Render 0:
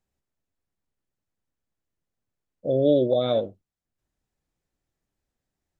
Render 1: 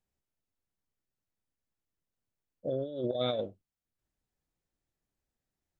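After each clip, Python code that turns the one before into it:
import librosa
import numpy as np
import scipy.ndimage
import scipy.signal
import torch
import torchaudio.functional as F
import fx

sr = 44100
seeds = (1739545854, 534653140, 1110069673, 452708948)

y = fx.dynamic_eq(x, sr, hz=2600.0, q=0.76, threshold_db=-43.0, ratio=4.0, max_db=5)
y = fx.over_compress(y, sr, threshold_db=-23.0, ratio=-0.5)
y = y * librosa.db_to_amplitude(-8.5)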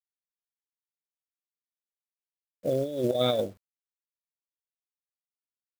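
y = fx.quant_companded(x, sr, bits=6)
y = y * librosa.db_to_amplitude(6.0)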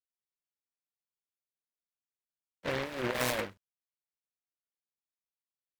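y = fx.ladder_lowpass(x, sr, hz=5400.0, resonance_pct=30)
y = fx.noise_mod_delay(y, sr, seeds[0], noise_hz=1300.0, depth_ms=0.25)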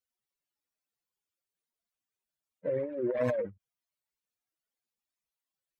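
y = fx.spec_expand(x, sr, power=2.9)
y = y * librosa.db_to_amplitude(3.0)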